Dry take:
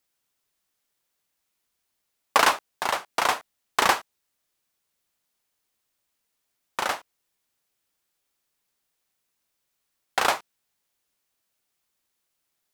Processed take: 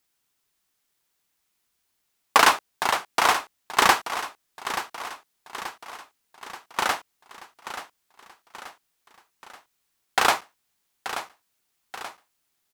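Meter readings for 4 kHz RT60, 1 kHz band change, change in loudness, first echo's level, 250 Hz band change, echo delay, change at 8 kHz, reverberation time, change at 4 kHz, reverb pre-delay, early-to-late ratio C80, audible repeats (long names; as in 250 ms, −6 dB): no reverb audible, +3.0 dB, +1.0 dB, −11.5 dB, +3.0 dB, 881 ms, +3.5 dB, no reverb audible, +3.5 dB, no reverb audible, no reverb audible, 5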